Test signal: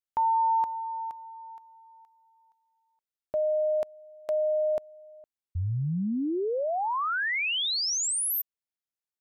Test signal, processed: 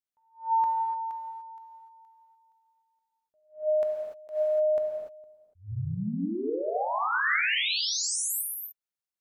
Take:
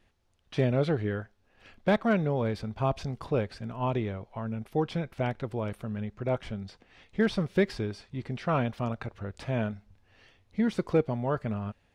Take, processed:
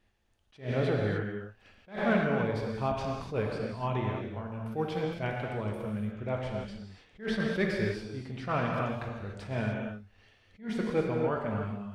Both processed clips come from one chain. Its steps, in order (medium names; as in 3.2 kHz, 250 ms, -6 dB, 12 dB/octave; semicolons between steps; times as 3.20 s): gated-style reverb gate 320 ms flat, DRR -0.5 dB; dynamic bell 1.8 kHz, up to +5 dB, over -41 dBFS, Q 1.1; attacks held to a fixed rise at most 200 dB/s; trim -5 dB